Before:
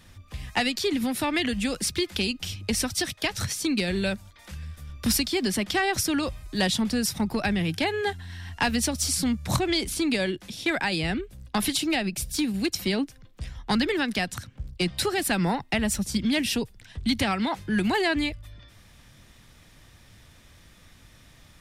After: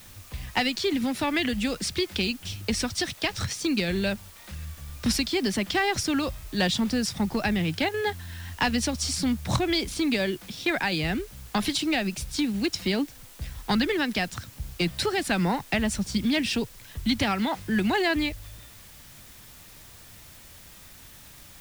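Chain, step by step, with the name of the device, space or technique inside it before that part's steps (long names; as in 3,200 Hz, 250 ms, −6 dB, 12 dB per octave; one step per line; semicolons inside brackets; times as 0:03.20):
worn cassette (low-pass filter 7,100 Hz 12 dB per octave; tape wow and flutter; tape dropouts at 0:02.40/0:07.89, 48 ms −7 dB; white noise bed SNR 22 dB)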